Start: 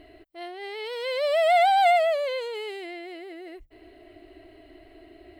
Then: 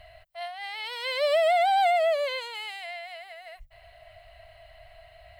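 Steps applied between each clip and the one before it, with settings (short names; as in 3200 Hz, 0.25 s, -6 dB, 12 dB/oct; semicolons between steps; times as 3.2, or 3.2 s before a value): Chebyshev band-stop 160–610 Hz, order 3; compressor 6:1, threshold -23 dBFS, peak gain reduction 7.5 dB; gain +3.5 dB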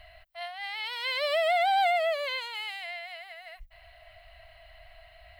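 ten-band EQ 125 Hz -10 dB, 500 Hz -9 dB, 8000 Hz -6 dB; gain +1.5 dB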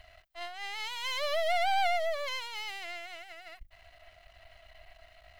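half-wave gain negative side -12 dB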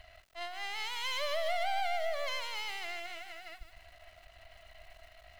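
compressor 3:1, threshold -31 dBFS, peak gain reduction 6.5 dB; lo-fi delay 0.153 s, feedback 35%, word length 9-bit, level -9 dB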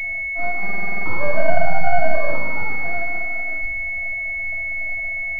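shoebox room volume 650 m³, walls furnished, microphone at 6.4 m; stuck buffer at 0.64, samples 2048, times 8; pulse-width modulation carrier 2200 Hz; gain +4 dB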